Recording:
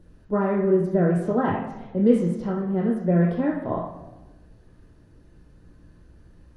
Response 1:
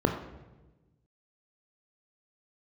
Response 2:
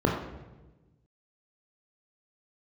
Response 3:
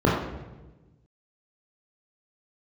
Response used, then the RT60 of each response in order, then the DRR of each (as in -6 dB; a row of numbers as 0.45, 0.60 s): 2; 1.2, 1.2, 1.2 s; 5.0, 0.5, -4.0 dB